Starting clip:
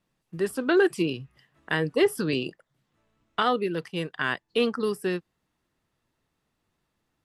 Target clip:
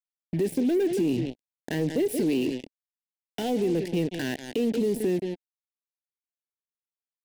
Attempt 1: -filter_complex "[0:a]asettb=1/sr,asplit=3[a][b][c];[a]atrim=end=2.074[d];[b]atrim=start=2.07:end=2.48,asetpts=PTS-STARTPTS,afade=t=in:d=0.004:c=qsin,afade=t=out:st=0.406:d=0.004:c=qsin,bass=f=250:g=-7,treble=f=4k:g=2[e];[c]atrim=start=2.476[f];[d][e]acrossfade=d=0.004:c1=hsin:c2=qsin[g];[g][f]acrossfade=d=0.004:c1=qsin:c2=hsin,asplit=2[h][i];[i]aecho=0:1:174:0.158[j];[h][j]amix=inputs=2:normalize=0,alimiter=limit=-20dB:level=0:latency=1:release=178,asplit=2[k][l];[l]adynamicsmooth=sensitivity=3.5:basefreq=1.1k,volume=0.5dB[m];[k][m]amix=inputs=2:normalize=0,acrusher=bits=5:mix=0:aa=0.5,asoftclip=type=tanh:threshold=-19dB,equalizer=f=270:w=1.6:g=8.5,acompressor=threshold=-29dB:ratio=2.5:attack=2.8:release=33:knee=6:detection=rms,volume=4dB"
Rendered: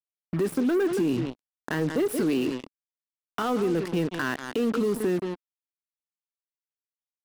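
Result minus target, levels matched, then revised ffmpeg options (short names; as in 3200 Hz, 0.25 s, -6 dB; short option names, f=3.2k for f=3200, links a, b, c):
1000 Hz band +6.5 dB
-filter_complex "[0:a]asettb=1/sr,asplit=3[a][b][c];[a]atrim=end=2.074[d];[b]atrim=start=2.07:end=2.48,asetpts=PTS-STARTPTS,afade=t=in:d=0.004:c=qsin,afade=t=out:st=0.406:d=0.004:c=qsin,bass=f=250:g=-7,treble=f=4k:g=2[e];[c]atrim=start=2.476[f];[d][e]acrossfade=d=0.004:c1=hsin:c2=qsin[g];[g][f]acrossfade=d=0.004:c1=qsin:c2=hsin,asplit=2[h][i];[i]aecho=0:1:174:0.158[j];[h][j]amix=inputs=2:normalize=0,alimiter=limit=-20dB:level=0:latency=1:release=178,asplit=2[k][l];[l]adynamicsmooth=sensitivity=3.5:basefreq=1.1k,volume=0.5dB[m];[k][m]amix=inputs=2:normalize=0,acrusher=bits=5:mix=0:aa=0.5,asoftclip=type=tanh:threshold=-19dB,asuperstop=centerf=1200:order=4:qfactor=1,equalizer=f=270:w=1.6:g=8.5,acompressor=threshold=-29dB:ratio=2.5:attack=2.8:release=33:knee=6:detection=rms,volume=4dB"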